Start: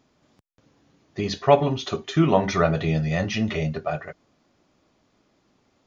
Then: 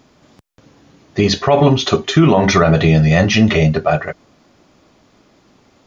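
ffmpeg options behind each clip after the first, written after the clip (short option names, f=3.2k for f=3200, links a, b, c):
-af "alimiter=level_in=14dB:limit=-1dB:release=50:level=0:latency=1,volume=-1dB"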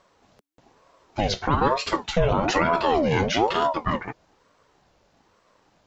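-af "aeval=exprs='val(0)*sin(2*PI*560*n/s+560*0.5/1.1*sin(2*PI*1.1*n/s))':c=same,volume=-7dB"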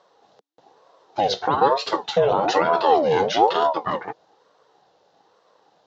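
-af "highpass=200,equalizer=f=240:t=q:w=4:g=-8,equalizer=f=470:t=q:w=4:g=7,equalizer=f=790:t=q:w=4:g=8,equalizer=f=2.3k:t=q:w=4:g=-8,equalizer=f=3.8k:t=q:w=4:g=5,lowpass=f=6.3k:w=0.5412,lowpass=f=6.3k:w=1.3066"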